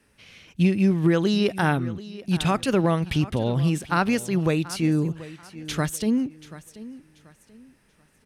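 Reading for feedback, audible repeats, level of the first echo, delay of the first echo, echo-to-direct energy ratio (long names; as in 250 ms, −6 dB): 29%, 2, −17.0 dB, 734 ms, −16.5 dB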